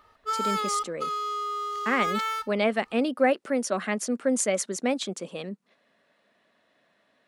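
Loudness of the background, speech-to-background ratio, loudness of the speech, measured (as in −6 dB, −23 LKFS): −29.5 LKFS, 1.5 dB, −28.0 LKFS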